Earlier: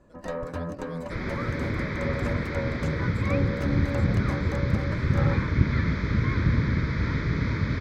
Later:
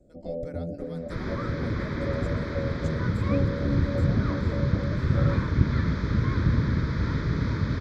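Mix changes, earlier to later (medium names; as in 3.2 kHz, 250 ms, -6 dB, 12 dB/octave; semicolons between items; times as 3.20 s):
first sound: add steep low-pass 730 Hz 96 dB/octave; second sound: add peaking EQ 2.2 kHz -9 dB 0.47 oct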